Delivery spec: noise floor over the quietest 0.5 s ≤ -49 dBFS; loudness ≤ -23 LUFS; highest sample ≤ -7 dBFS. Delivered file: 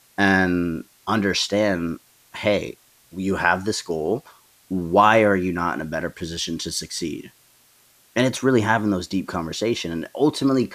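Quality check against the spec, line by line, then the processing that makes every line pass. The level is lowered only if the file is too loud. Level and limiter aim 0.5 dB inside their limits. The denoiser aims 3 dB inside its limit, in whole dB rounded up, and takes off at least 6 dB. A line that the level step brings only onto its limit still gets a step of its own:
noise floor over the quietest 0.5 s -57 dBFS: OK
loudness -22.0 LUFS: fail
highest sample -2.5 dBFS: fail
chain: gain -1.5 dB; limiter -7.5 dBFS

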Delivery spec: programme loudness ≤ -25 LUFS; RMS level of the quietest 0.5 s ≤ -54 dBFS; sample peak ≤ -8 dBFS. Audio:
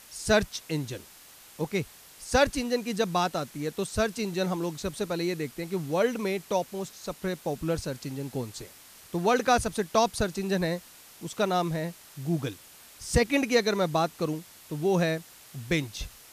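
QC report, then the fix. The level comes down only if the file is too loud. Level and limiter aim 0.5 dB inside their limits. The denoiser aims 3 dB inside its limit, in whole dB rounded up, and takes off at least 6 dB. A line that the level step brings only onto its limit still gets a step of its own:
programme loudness -29.0 LUFS: OK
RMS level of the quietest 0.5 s -52 dBFS: fail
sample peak -10.0 dBFS: OK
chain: denoiser 6 dB, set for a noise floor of -52 dBFS

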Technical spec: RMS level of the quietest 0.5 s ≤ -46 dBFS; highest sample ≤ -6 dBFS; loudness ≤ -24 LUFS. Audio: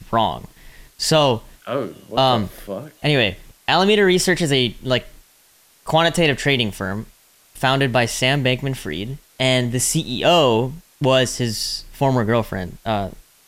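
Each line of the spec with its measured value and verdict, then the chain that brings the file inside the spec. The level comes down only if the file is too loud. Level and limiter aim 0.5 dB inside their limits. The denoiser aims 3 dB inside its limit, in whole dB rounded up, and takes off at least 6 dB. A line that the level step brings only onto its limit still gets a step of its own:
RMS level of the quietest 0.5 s -54 dBFS: OK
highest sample -3.0 dBFS: fail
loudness -19.0 LUFS: fail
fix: gain -5.5 dB

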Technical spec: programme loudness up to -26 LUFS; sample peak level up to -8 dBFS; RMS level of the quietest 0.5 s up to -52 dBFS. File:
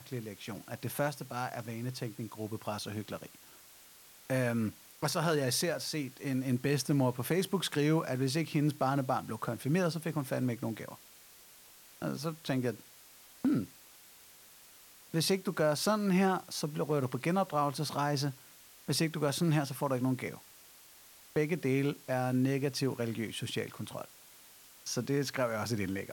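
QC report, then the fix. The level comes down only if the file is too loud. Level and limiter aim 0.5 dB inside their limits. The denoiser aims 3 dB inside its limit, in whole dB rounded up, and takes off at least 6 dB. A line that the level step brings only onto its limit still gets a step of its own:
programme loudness -33.5 LUFS: OK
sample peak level -16.5 dBFS: OK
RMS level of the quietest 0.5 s -57 dBFS: OK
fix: none

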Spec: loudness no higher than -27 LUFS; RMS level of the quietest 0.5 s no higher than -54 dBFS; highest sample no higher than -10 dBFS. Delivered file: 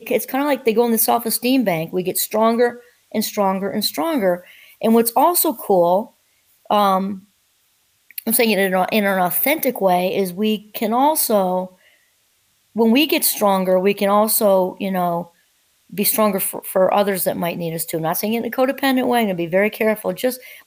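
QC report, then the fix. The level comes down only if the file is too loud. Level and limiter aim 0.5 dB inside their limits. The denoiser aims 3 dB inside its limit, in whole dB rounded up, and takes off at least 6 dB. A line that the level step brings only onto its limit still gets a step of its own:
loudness -18.0 LUFS: fail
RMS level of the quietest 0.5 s -62 dBFS: OK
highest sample -5.0 dBFS: fail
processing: gain -9.5 dB

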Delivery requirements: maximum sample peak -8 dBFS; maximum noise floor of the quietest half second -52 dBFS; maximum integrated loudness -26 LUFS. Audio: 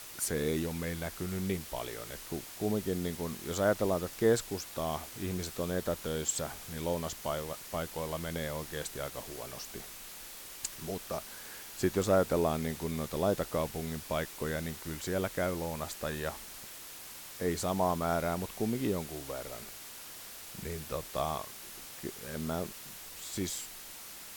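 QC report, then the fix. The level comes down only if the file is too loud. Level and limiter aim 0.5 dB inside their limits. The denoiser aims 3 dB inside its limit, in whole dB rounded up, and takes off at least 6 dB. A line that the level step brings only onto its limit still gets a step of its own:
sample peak -14.0 dBFS: OK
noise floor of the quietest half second -47 dBFS: fail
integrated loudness -35.0 LUFS: OK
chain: denoiser 8 dB, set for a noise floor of -47 dBFS

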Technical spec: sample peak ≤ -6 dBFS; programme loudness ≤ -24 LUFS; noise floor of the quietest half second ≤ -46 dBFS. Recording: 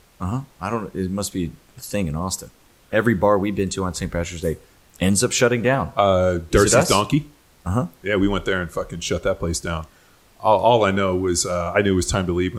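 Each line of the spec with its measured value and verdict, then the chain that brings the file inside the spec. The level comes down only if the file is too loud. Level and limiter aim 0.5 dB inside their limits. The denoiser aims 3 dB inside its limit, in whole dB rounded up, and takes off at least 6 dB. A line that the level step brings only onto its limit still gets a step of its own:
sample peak -3.0 dBFS: fail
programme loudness -21.0 LUFS: fail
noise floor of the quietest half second -53 dBFS: OK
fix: gain -3.5 dB

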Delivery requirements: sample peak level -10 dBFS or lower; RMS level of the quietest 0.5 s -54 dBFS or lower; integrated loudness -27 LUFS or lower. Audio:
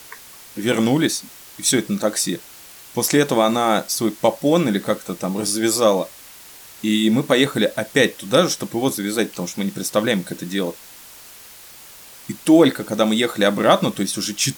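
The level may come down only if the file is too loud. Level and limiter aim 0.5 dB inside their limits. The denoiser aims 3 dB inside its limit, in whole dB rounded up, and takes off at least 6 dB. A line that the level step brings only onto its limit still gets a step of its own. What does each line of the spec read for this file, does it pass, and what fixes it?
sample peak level -3.0 dBFS: fail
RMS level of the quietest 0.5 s -42 dBFS: fail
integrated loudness -19.5 LUFS: fail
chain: denoiser 7 dB, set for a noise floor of -42 dBFS; gain -8 dB

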